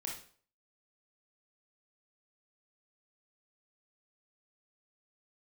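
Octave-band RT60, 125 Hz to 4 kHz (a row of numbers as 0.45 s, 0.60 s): 0.50 s, 0.45 s, 0.50 s, 0.45 s, 0.45 s, 0.40 s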